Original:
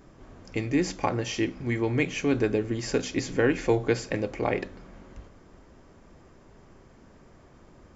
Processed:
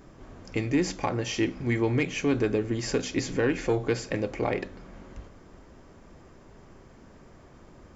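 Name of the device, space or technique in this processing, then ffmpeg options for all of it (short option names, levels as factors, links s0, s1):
soft clipper into limiter: -af "asoftclip=type=tanh:threshold=0.2,alimiter=limit=0.126:level=0:latency=1:release=479,volume=1.26"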